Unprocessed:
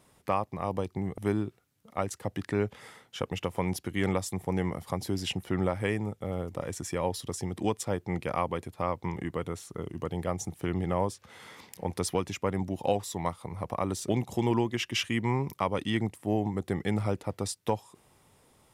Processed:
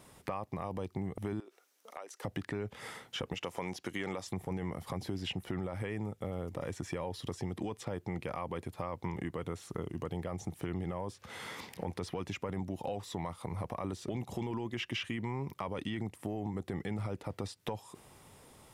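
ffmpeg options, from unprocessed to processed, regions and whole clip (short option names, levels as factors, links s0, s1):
-filter_complex "[0:a]asettb=1/sr,asplit=3[s0][s1][s2];[s0]atrim=end=1.404[s3];[s1]atrim=start=1.4:end=2.24,asetpts=PTS-STARTPTS,afade=t=in:d=0.004:c=qsin,afade=t=out:st=0.836:d=0.004:c=qsin,highpass=f=390:w=0.5412,highpass=f=390:w=1.3066,equalizer=f=5900:t=o:w=0.3:g=6,acompressor=threshold=0.00447:ratio=6:attack=3.2:release=140:knee=1:detection=peak[s4];[s2]atrim=start=2.236[s5];[s3][s4]acrossfade=d=0.004:c1=hsin:c2=qsin[s6];[s6][s5]acrossfade=d=0.004:c1=qsin:c2=hsin,asettb=1/sr,asplit=3[s7][s8][s9];[s7]atrim=end=3.344[s10];[s8]atrim=start=3.34:end=4.27,asetpts=PTS-STARTPTS,afade=t=in:d=0.004:c=qsin,afade=t=out:st=0.926:d=0.004:c=qsin,highpass=f=370:p=1,equalizer=f=6300:t=o:w=0.81:g=7[s11];[s9]atrim=start=4.266[s12];[s10][s11]acrossfade=d=0.004:c1=hsin:c2=qsin[s13];[s13][s12]acrossfade=d=0.004:c1=qsin:c2=hsin,acrossover=split=4000[s14][s15];[s15]acompressor=threshold=0.00251:ratio=4:attack=1:release=60[s16];[s14][s16]amix=inputs=2:normalize=0,alimiter=limit=0.0708:level=0:latency=1:release=14,acompressor=threshold=0.01:ratio=4,volume=1.78"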